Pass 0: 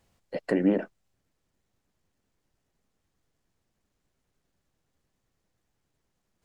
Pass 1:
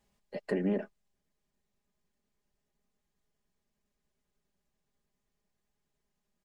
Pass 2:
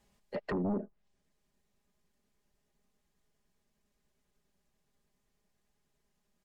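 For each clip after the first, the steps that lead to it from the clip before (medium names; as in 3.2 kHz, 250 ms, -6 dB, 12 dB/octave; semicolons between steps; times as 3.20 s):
band-stop 1.4 kHz, Q 18; comb 4.9 ms; trim -7 dB
low-pass that closes with the level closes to 360 Hz, closed at -30 dBFS; sine folder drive 7 dB, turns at -21.5 dBFS; trim -7 dB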